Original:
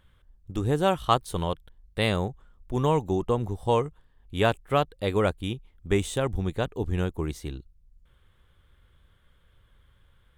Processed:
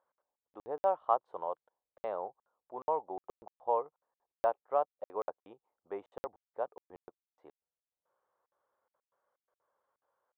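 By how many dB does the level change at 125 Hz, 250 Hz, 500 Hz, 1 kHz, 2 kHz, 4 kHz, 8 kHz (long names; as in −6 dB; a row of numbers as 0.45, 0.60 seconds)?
below −35 dB, −24.5 dB, −9.0 dB, −5.5 dB, −21.5 dB, below −30 dB, below −30 dB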